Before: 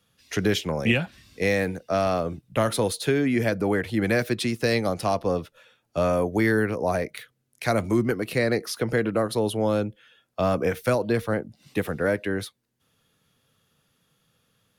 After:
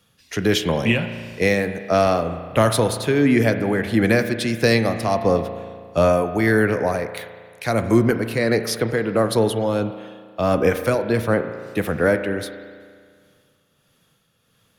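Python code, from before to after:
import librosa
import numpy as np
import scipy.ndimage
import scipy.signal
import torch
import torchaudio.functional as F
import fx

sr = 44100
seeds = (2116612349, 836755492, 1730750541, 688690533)

y = x * (1.0 - 0.47 / 2.0 + 0.47 / 2.0 * np.cos(2.0 * np.pi * 1.5 * (np.arange(len(x)) / sr)))
y = fx.rev_spring(y, sr, rt60_s=1.9, pass_ms=(35,), chirp_ms=65, drr_db=9.0)
y = F.gain(torch.from_numpy(y), 6.5).numpy()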